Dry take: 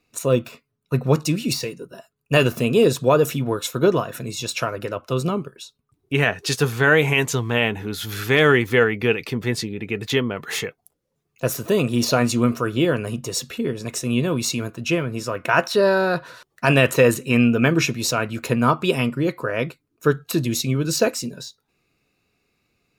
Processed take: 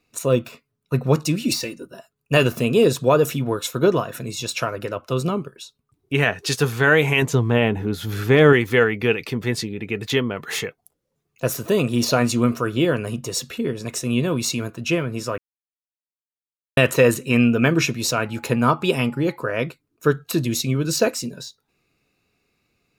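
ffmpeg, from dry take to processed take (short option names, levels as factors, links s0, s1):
-filter_complex "[0:a]asettb=1/sr,asplit=3[s0][s1][s2];[s0]atrim=end=1.454[s3];[s1]atrim=start=1.45:end=1.9,asetpts=PTS-STARTPTS,afade=t=in:d=0.004:c=qsin,afade=t=out:st=0.446:d=0.004:c=qsin,aecho=1:1:3.4:0.59,atrim=end_sample=19845[s4];[s2]atrim=start=1.896[s5];[s3][s4]acrossfade=d=0.004:c1=hsin:c2=qsin[s6];[s6][s5]acrossfade=d=0.004:c1=qsin:c2=hsin,asettb=1/sr,asplit=3[s7][s8][s9];[s7]atrim=end=7.224[s10];[s8]atrim=start=7.22:end=8.53,asetpts=PTS-STARTPTS,afade=t=in:d=0.004:c=qsin,afade=t=out:st=1.306:d=0.004:c=qsin,tiltshelf=f=1100:g=5.5[s11];[s9]atrim=start=8.526[s12];[s10][s11]acrossfade=d=0.004:c1=hsin:c2=qsin[s13];[s13][s12]acrossfade=d=0.004:c1=qsin:c2=hsin,asettb=1/sr,asplit=3[s14][s15][s16];[s14]atrim=end=18.264[s17];[s15]atrim=start=18.26:end=19.36,asetpts=PTS-STARTPTS,afade=t=in:d=0.004:c=qsin,afade=t=out:st=1.096:d=0.004:c=qsin,aeval=exprs='val(0)+0.00447*sin(2*PI*840*n/s)':c=same[s18];[s16]atrim=start=19.356[s19];[s17][s18]acrossfade=d=0.004:c1=hsin:c2=qsin[s20];[s20][s19]acrossfade=d=0.004:c1=qsin:c2=hsin,asplit=3[s21][s22][s23];[s21]atrim=end=15.38,asetpts=PTS-STARTPTS,afade=t=out:st=15.376:d=0.004:c=hsin[s24];[s22]atrim=start=15.38:end=16.77,asetpts=PTS-STARTPTS,volume=0[s25];[s23]atrim=start=16.77,asetpts=PTS-STARTPTS,afade=t=in:d=0.004:c=hsin[s26];[s24][s25][s26]concat=n=3:v=0:a=1"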